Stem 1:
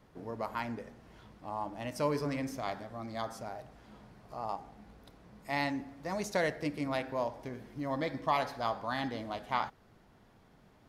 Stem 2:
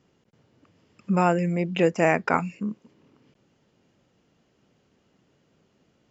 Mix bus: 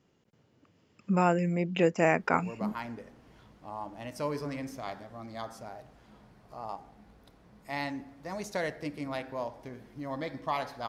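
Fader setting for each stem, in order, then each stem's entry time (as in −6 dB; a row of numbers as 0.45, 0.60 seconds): −2.0, −4.0 decibels; 2.20, 0.00 seconds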